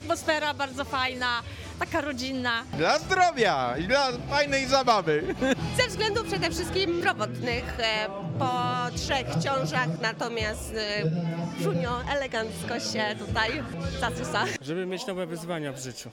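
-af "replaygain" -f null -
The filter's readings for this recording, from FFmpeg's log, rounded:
track_gain = +6.8 dB
track_peak = 0.209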